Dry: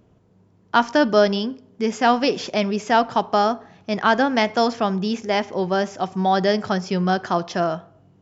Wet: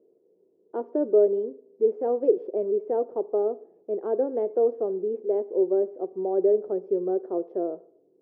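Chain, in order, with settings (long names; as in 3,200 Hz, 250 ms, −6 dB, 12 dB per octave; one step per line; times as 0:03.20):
flat-topped band-pass 420 Hz, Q 2.6
level +3.5 dB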